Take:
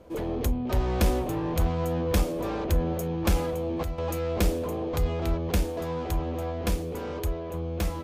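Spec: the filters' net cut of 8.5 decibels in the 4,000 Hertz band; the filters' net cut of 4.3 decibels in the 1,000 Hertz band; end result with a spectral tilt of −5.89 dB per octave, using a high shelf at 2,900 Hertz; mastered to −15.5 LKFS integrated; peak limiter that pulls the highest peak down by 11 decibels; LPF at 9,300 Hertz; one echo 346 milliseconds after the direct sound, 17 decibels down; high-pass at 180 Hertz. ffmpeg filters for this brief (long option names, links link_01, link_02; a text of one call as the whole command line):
ffmpeg -i in.wav -af "highpass=180,lowpass=9300,equalizer=frequency=1000:width_type=o:gain=-5,highshelf=frequency=2900:gain=-6,equalizer=frequency=4000:width_type=o:gain=-6,alimiter=level_in=2.5dB:limit=-24dB:level=0:latency=1,volume=-2.5dB,aecho=1:1:346:0.141,volume=19dB" out.wav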